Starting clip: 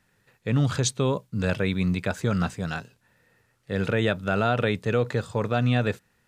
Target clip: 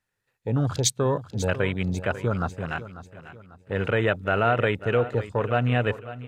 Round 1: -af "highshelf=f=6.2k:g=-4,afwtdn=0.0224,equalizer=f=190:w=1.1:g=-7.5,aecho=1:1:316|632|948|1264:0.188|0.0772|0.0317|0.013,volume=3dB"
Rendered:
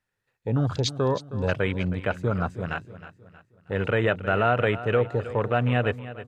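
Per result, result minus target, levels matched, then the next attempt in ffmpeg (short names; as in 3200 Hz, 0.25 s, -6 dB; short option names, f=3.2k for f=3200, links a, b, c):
8000 Hz band -12.0 dB; echo 0.228 s early
-af "highshelf=f=6.2k:g=2,afwtdn=0.0224,equalizer=f=190:w=1.1:g=-7.5,aecho=1:1:316|632|948|1264:0.188|0.0772|0.0317|0.013,volume=3dB"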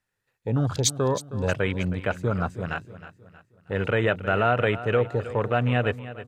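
echo 0.228 s early
-af "highshelf=f=6.2k:g=2,afwtdn=0.0224,equalizer=f=190:w=1.1:g=-7.5,aecho=1:1:544|1088|1632|2176:0.188|0.0772|0.0317|0.013,volume=3dB"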